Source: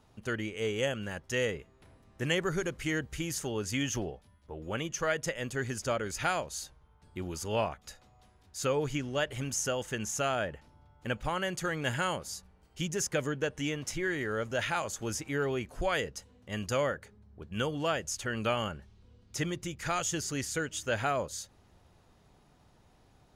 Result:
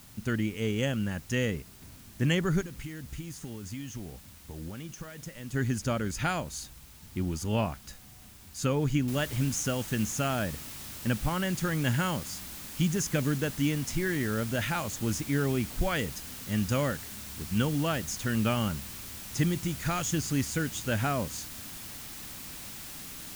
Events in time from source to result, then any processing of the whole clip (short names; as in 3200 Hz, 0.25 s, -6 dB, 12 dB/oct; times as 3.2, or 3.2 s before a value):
2.61–5.54 compressor 12:1, threshold -41 dBFS
9.08 noise floor step -54 dB -43 dB
whole clip: resonant low shelf 330 Hz +7.5 dB, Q 1.5